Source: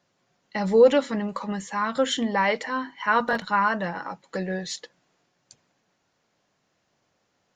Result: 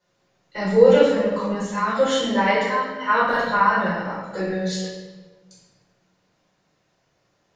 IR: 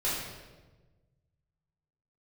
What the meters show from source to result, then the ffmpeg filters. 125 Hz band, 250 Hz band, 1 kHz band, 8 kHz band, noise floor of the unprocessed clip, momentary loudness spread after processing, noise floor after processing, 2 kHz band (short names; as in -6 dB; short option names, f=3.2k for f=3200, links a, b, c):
+5.5 dB, +3.5 dB, +4.5 dB, +1.5 dB, -73 dBFS, 14 LU, -68 dBFS, +3.5 dB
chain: -filter_complex "[1:a]atrim=start_sample=2205[a];[0:a][a]afir=irnorm=-1:irlink=0,volume=-4.5dB"